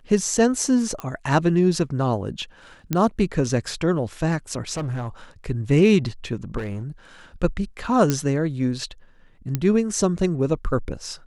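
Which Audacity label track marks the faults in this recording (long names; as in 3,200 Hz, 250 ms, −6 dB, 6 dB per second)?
1.000000	1.000000	click −17 dBFS
2.930000	2.930000	click −8 dBFS
4.740000	5.080000	clipping −23.5 dBFS
6.570000	6.830000	clipping −25 dBFS
8.100000	8.100000	click −7 dBFS
9.550000	9.550000	click −9 dBFS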